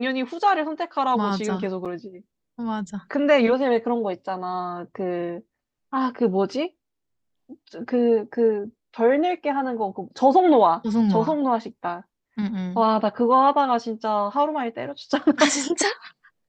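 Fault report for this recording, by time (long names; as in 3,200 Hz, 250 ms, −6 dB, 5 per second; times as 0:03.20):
0:01.85–0:01.86: drop-out 6.4 ms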